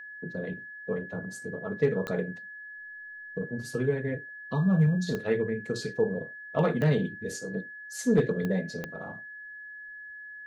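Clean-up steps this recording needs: clip repair -14.5 dBFS; de-click; notch 1700 Hz, Q 30

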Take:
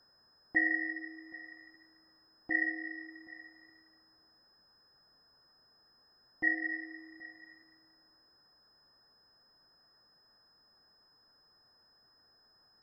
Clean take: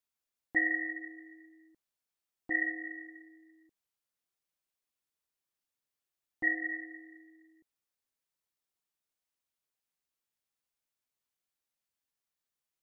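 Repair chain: notch 5100 Hz, Q 30; noise print and reduce 23 dB; inverse comb 0.777 s -19.5 dB

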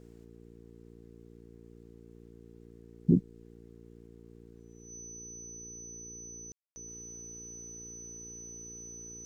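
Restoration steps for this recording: de-hum 57.7 Hz, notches 8; notch 6000 Hz, Q 30; room tone fill 6.52–6.76

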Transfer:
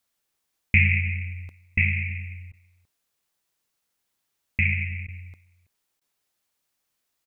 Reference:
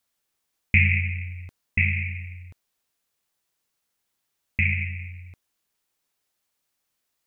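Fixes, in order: interpolate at 2.52/5.07/6, 12 ms; inverse comb 0.328 s -21 dB

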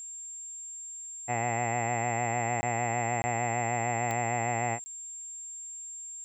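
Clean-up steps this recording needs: de-click; notch 7400 Hz, Q 30; interpolate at 2.61/3.22/4.84, 20 ms; expander -34 dBFS, range -21 dB

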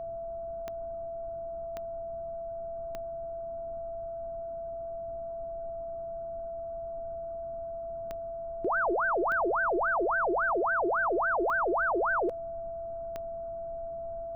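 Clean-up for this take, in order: de-click; notch 670 Hz, Q 30; noise print and reduce 30 dB

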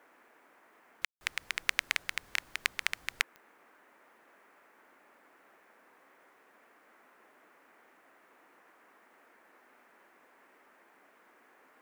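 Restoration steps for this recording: de-click; room tone fill 1.05–1.21; noise print and reduce 30 dB

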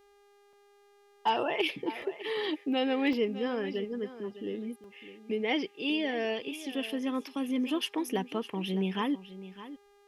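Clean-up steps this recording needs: clip repair -17 dBFS; de-hum 405.2 Hz, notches 38; interpolate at 0.53/2.02/3.13/4.84, 1.8 ms; inverse comb 0.607 s -14.5 dB

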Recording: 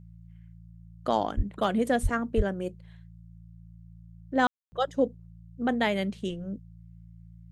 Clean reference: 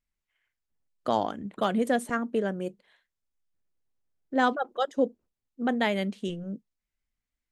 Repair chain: de-hum 56.4 Hz, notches 3; de-plosive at 1.36/2.02/2.36; room tone fill 4.47–4.72

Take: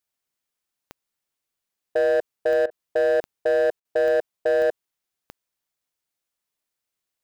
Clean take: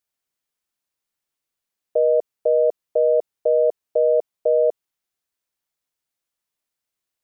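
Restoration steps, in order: clip repair -16.5 dBFS; de-click; interpolate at 2.66/3.8, 48 ms

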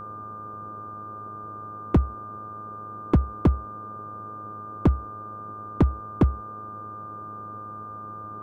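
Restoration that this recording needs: clip repair -12.5 dBFS; de-hum 105.2 Hz, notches 15; notch 1200 Hz, Q 30; noise print and reduce 30 dB

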